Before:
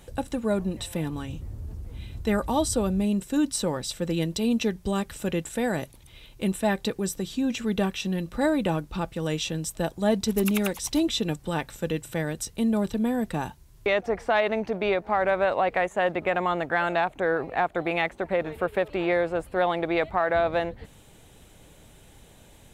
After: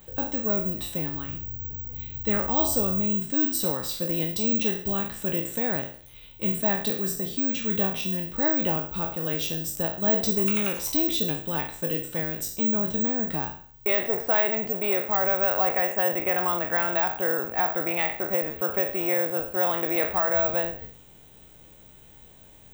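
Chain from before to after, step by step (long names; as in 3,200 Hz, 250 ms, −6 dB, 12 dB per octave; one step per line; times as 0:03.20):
peak hold with a decay on every bin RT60 0.52 s
bad sample-rate conversion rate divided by 2×, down filtered, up zero stuff
level −4 dB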